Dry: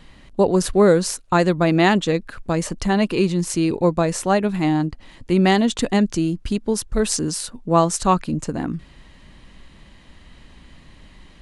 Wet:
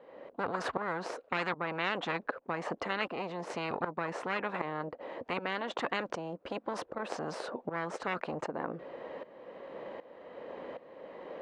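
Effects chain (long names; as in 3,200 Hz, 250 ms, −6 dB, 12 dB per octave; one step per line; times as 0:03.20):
one-sided soft clipper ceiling −19 dBFS
shaped tremolo saw up 1.3 Hz, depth 85%
four-pole ladder band-pass 550 Hz, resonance 70%
every bin compressed towards the loudest bin 10 to 1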